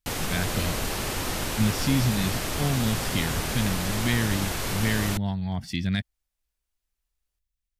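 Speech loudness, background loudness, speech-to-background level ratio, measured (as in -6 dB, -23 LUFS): -28.5 LUFS, -29.0 LUFS, 0.5 dB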